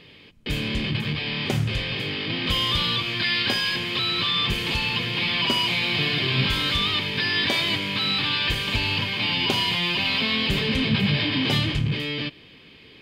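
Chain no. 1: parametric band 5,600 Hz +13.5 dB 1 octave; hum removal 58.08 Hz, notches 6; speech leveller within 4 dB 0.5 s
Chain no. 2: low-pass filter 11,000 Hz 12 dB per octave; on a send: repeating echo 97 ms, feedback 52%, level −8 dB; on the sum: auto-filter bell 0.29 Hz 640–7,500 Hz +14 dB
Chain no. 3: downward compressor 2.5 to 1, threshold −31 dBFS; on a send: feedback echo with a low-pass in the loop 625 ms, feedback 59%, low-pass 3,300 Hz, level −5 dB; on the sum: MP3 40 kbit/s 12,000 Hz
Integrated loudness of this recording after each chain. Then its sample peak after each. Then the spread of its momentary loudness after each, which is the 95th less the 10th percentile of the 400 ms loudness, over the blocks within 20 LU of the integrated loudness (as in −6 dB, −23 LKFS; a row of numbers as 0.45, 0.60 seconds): −18.5, −17.0, −29.0 LKFS; −5.5, −1.5, −16.5 dBFS; 2, 12, 4 LU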